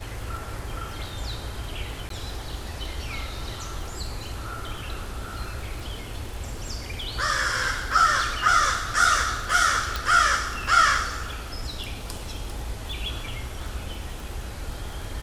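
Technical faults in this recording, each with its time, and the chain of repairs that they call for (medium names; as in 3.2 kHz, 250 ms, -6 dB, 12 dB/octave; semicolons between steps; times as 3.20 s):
crackle 22 per s -32 dBFS
2.09–2.10 s: dropout 13 ms
9.96 s: pop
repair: de-click; interpolate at 2.09 s, 13 ms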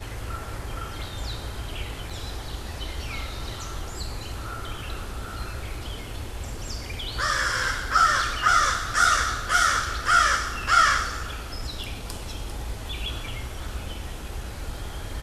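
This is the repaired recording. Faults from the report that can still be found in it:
9.96 s: pop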